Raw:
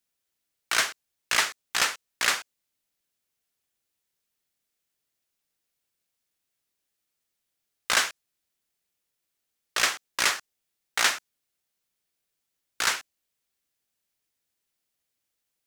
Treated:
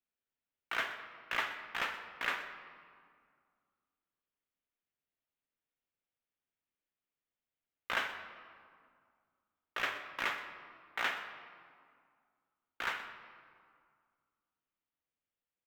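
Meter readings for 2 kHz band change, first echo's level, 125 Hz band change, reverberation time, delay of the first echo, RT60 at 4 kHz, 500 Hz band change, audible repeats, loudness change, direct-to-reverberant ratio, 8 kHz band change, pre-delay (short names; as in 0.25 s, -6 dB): -9.0 dB, -15.0 dB, -8.0 dB, 2.1 s, 0.124 s, 1.3 s, -7.5 dB, 1, -12.0 dB, 6.0 dB, -27.5 dB, 3 ms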